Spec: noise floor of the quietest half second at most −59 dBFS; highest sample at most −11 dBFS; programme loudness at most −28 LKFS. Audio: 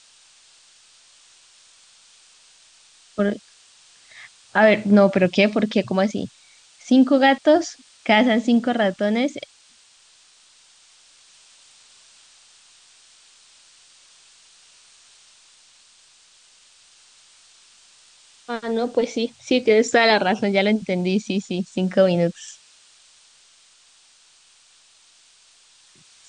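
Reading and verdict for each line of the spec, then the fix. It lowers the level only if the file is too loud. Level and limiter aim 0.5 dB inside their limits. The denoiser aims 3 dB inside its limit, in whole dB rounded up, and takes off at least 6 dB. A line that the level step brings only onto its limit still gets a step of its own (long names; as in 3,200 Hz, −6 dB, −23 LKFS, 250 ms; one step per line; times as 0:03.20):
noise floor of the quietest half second −55 dBFS: out of spec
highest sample −5.0 dBFS: out of spec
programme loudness −19.5 LKFS: out of spec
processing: level −9 dB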